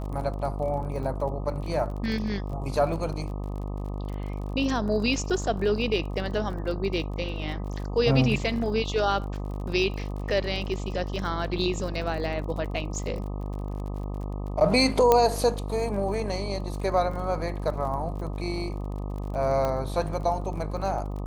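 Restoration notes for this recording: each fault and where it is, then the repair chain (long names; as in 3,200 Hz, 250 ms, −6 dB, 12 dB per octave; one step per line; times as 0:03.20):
mains buzz 50 Hz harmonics 25 −32 dBFS
surface crackle 39 per second −36 dBFS
0:15.12: click −6 dBFS
0:19.65: click −16 dBFS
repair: click removal
hum removal 50 Hz, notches 25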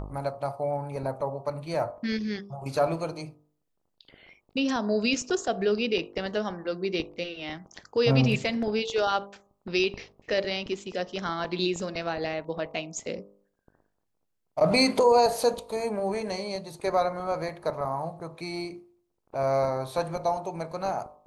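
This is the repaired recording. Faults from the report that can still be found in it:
0:15.12: click
0:19.65: click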